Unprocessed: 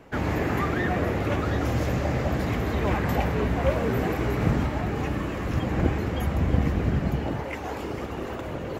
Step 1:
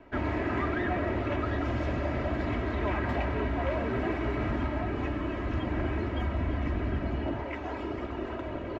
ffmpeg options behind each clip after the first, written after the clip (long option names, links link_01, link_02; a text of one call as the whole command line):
ffmpeg -i in.wav -filter_complex "[0:a]lowpass=3100,aecho=1:1:3.1:0.6,acrossover=split=750|2100[link_01][link_02][link_03];[link_01]alimiter=limit=-19dB:level=0:latency=1[link_04];[link_04][link_02][link_03]amix=inputs=3:normalize=0,volume=-4dB" out.wav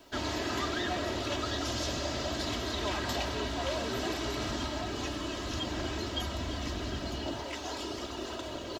ffmpeg -i in.wav -af "lowshelf=frequency=290:gain=-6.5,aexciter=amount=9.6:drive=7.9:freq=3400,volume=-1.5dB" out.wav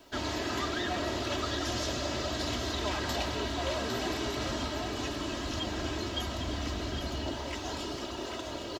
ffmpeg -i in.wav -af "aecho=1:1:807:0.398" out.wav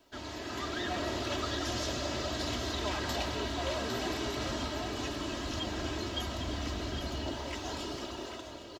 ffmpeg -i in.wav -af "dynaudnorm=framelen=140:gausssize=9:maxgain=7dB,volume=-8.5dB" out.wav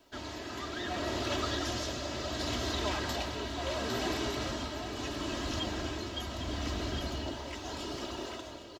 ffmpeg -i in.wav -af "tremolo=f=0.73:d=0.37,volume=1.5dB" out.wav